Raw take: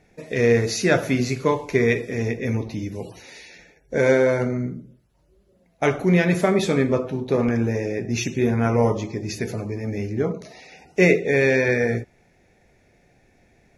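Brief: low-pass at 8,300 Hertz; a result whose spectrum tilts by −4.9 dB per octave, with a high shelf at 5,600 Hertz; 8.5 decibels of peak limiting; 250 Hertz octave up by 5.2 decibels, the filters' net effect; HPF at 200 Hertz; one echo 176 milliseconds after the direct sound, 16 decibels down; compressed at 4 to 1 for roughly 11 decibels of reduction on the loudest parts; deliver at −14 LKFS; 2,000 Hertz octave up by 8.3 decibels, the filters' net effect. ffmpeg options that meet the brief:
ffmpeg -i in.wav -af "highpass=200,lowpass=8300,equalizer=frequency=250:width_type=o:gain=8.5,equalizer=frequency=2000:width_type=o:gain=9,highshelf=frequency=5600:gain=4,acompressor=threshold=-20dB:ratio=4,alimiter=limit=-15dB:level=0:latency=1,aecho=1:1:176:0.158,volume=12dB" out.wav

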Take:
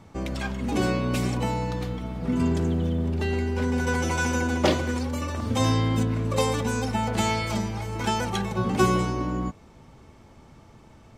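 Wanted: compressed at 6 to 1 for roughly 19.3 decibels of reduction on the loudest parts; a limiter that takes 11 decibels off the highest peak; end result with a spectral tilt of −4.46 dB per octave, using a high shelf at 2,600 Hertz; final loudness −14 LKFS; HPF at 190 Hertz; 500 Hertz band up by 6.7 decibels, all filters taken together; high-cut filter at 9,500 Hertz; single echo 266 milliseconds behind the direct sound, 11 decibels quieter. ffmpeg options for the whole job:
ffmpeg -i in.wav -af "highpass=190,lowpass=9500,equalizer=frequency=500:width_type=o:gain=8,highshelf=frequency=2600:gain=7.5,acompressor=threshold=-34dB:ratio=6,alimiter=level_in=7.5dB:limit=-24dB:level=0:latency=1,volume=-7.5dB,aecho=1:1:266:0.282,volume=26dB" out.wav

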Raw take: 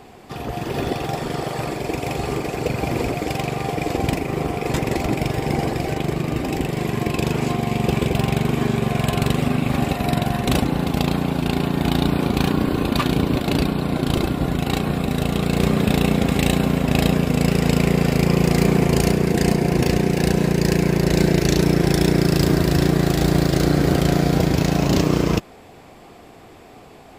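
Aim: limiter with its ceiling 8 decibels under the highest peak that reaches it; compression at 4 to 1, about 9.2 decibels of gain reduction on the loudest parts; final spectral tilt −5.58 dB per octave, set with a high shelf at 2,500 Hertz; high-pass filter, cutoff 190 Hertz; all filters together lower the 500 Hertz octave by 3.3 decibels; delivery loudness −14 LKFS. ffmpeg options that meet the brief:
ffmpeg -i in.wav -af "highpass=190,equalizer=frequency=500:width_type=o:gain=-4,highshelf=frequency=2500:gain=-6.5,acompressor=threshold=-28dB:ratio=4,volume=20dB,alimiter=limit=-3.5dB:level=0:latency=1" out.wav

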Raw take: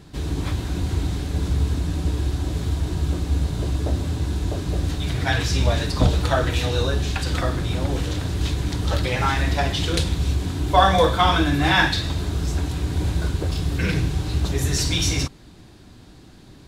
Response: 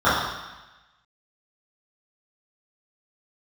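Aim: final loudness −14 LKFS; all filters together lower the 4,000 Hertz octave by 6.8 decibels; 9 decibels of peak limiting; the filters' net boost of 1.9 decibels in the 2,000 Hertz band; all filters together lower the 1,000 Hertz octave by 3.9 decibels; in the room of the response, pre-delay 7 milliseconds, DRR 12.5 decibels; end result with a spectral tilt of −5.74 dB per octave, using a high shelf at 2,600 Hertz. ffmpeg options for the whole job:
-filter_complex "[0:a]equalizer=frequency=1000:width_type=o:gain=-6.5,equalizer=frequency=2000:width_type=o:gain=9,highshelf=frequency=2600:gain=-8,equalizer=frequency=4000:width_type=o:gain=-4.5,alimiter=limit=-14dB:level=0:latency=1,asplit=2[link_01][link_02];[1:a]atrim=start_sample=2205,adelay=7[link_03];[link_02][link_03]afir=irnorm=-1:irlink=0,volume=-36.5dB[link_04];[link_01][link_04]amix=inputs=2:normalize=0,volume=10.5dB"

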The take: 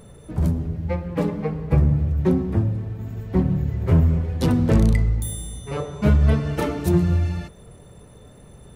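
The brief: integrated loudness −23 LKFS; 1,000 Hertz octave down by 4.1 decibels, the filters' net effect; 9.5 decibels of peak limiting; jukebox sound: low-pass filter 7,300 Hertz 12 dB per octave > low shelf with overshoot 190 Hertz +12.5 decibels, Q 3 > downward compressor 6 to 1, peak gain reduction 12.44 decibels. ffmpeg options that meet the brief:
ffmpeg -i in.wav -af "equalizer=frequency=1000:width_type=o:gain=-4.5,alimiter=limit=-15.5dB:level=0:latency=1,lowpass=7300,lowshelf=frequency=190:width_type=q:width=3:gain=12.5,acompressor=threshold=-15dB:ratio=6,volume=-3.5dB" out.wav

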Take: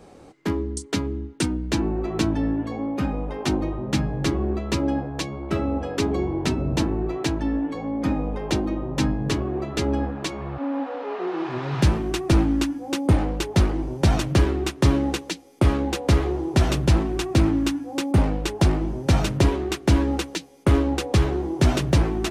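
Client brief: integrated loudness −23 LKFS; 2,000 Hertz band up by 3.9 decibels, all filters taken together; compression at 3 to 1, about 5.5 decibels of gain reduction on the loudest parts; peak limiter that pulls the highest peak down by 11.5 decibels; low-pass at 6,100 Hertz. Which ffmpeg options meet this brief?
ffmpeg -i in.wav -af "lowpass=6100,equalizer=frequency=2000:width_type=o:gain=5,acompressor=threshold=-20dB:ratio=3,volume=6.5dB,alimiter=limit=-13.5dB:level=0:latency=1" out.wav

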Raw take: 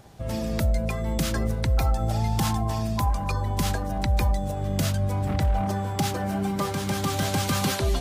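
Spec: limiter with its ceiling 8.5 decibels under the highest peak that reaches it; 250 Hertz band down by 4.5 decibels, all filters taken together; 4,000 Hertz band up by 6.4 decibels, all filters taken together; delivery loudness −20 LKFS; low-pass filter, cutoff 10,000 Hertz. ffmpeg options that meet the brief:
ffmpeg -i in.wav -af "lowpass=10000,equalizer=frequency=250:width_type=o:gain=-6.5,equalizer=frequency=4000:width_type=o:gain=8,volume=7.5dB,alimiter=limit=-9.5dB:level=0:latency=1" out.wav

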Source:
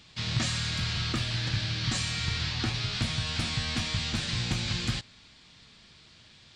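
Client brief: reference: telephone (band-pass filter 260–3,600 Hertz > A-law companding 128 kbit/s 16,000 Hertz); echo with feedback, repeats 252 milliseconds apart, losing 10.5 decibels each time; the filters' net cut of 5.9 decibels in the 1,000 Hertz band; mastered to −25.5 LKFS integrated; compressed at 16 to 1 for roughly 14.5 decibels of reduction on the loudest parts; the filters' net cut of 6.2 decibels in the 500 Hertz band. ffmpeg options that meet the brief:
ffmpeg -i in.wav -af "equalizer=frequency=500:width_type=o:gain=-6,equalizer=frequency=1000:width_type=o:gain=-6.5,acompressor=threshold=-39dB:ratio=16,highpass=260,lowpass=3600,aecho=1:1:252|504|756:0.299|0.0896|0.0269,volume=21dB" -ar 16000 -c:a pcm_alaw out.wav

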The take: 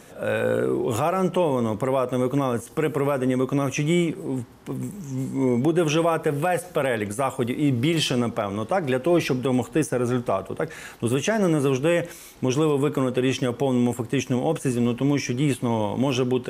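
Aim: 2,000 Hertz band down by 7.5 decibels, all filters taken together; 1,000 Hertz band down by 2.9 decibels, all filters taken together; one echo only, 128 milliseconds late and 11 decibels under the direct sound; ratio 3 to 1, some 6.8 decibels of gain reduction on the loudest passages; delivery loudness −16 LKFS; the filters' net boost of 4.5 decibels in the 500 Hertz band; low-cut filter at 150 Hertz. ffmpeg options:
ffmpeg -i in.wav -af "highpass=150,equalizer=frequency=500:width_type=o:gain=7,equalizer=frequency=1000:width_type=o:gain=-5.5,equalizer=frequency=2000:width_type=o:gain=-9,acompressor=threshold=-23dB:ratio=3,aecho=1:1:128:0.282,volume=10.5dB" out.wav

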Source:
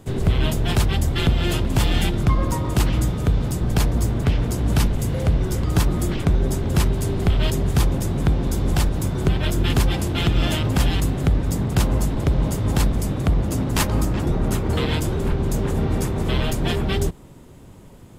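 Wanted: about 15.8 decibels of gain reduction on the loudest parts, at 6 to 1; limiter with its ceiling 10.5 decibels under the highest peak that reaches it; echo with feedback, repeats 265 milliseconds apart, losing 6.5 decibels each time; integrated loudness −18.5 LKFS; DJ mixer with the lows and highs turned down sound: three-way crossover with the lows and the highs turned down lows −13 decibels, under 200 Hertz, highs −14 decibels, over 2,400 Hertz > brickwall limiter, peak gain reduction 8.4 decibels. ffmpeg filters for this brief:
ffmpeg -i in.wav -filter_complex "[0:a]acompressor=threshold=-31dB:ratio=6,alimiter=level_in=5dB:limit=-24dB:level=0:latency=1,volume=-5dB,acrossover=split=200 2400:gain=0.224 1 0.2[link_01][link_02][link_03];[link_01][link_02][link_03]amix=inputs=3:normalize=0,aecho=1:1:265|530|795|1060|1325|1590:0.473|0.222|0.105|0.0491|0.0231|0.0109,volume=27.5dB,alimiter=limit=-9.5dB:level=0:latency=1" out.wav

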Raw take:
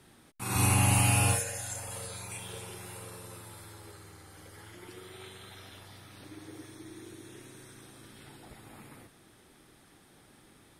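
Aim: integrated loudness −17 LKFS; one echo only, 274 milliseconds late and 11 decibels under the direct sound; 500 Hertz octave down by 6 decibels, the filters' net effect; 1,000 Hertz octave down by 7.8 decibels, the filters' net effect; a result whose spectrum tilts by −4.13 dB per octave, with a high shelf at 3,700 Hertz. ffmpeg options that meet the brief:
ffmpeg -i in.wav -af "equalizer=frequency=500:width_type=o:gain=-5.5,equalizer=frequency=1000:width_type=o:gain=-8,highshelf=frequency=3700:gain=-3,aecho=1:1:274:0.282,volume=13.5dB" out.wav

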